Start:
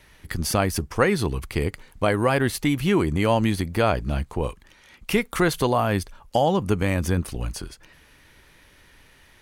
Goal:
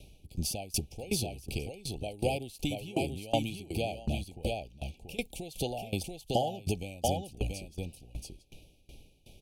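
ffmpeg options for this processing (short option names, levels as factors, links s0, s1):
-filter_complex "[0:a]lowshelf=f=420:g=7.5,acrossover=split=700[s0][s1];[s0]acompressor=threshold=0.0398:ratio=6[s2];[s2][s1]amix=inputs=2:normalize=0,asuperstop=centerf=1400:order=20:qfactor=0.9,aecho=1:1:683:0.562,aeval=exprs='val(0)*pow(10,-22*if(lt(mod(2.7*n/s,1),2*abs(2.7)/1000),1-mod(2.7*n/s,1)/(2*abs(2.7)/1000),(mod(2.7*n/s,1)-2*abs(2.7)/1000)/(1-2*abs(2.7)/1000))/20)':c=same"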